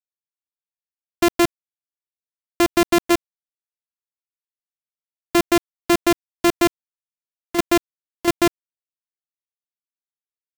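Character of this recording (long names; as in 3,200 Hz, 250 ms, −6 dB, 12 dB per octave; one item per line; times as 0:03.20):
a buzz of ramps at a fixed pitch in blocks of 128 samples
chopped level 2.9 Hz, depth 60%, duty 85%
a quantiser's noise floor 6 bits, dither none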